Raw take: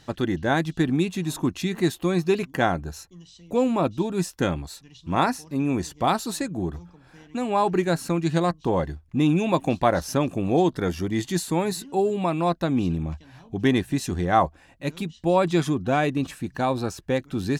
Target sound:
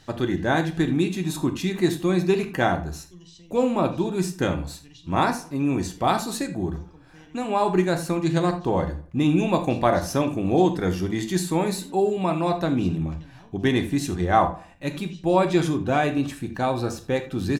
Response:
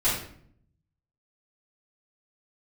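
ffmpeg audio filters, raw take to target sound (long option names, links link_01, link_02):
-filter_complex "[0:a]asplit=2[link_01][link_02];[link_02]adelay=82,lowpass=frequency=2800:poles=1,volume=-17dB,asplit=2[link_03][link_04];[link_04]adelay=82,lowpass=frequency=2800:poles=1,volume=0.41,asplit=2[link_05][link_06];[link_06]adelay=82,lowpass=frequency=2800:poles=1,volume=0.41[link_07];[link_01][link_03][link_05][link_07]amix=inputs=4:normalize=0,asplit=2[link_08][link_09];[1:a]atrim=start_sample=2205,atrim=end_sample=4410[link_10];[link_09][link_10]afir=irnorm=-1:irlink=0,volume=-16.5dB[link_11];[link_08][link_11]amix=inputs=2:normalize=0,volume=-1.5dB"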